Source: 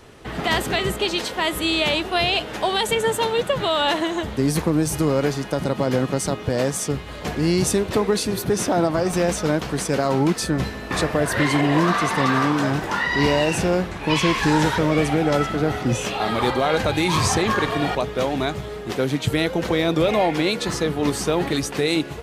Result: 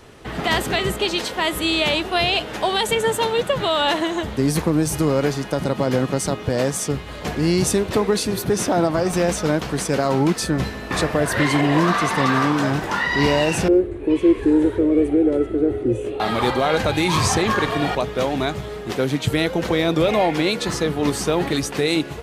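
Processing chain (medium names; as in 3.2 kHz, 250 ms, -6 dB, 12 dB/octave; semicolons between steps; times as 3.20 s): 13.68–16.20 s: FFT filter 110 Hz 0 dB, 160 Hz -20 dB, 360 Hz +10 dB, 840 Hz -17 dB, 2.2 kHz -15 dB, 3.8 kHz -19 dB, 5.5 kHz -27 dB, 9.3 kHz -11 dB, 13 kHz -23 dB; trim +1 dB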